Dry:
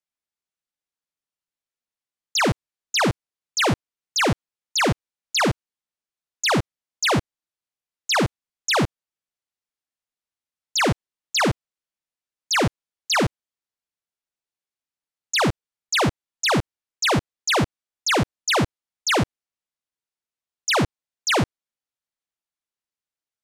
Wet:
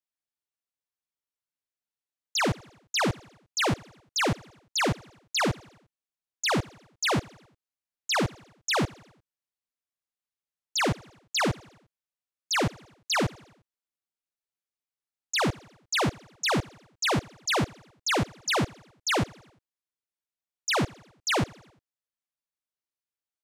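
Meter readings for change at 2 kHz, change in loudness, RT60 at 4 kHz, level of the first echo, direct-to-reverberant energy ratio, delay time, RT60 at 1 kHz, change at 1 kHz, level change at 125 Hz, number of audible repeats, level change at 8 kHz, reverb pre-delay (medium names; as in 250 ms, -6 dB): -5.5 dB, -5.5 dB, no reverb, -23.5 dB, no reverb, 88 ms, no reverb, -5.5 dB, -5.5 dB, 3, -5.5 dB, no reverb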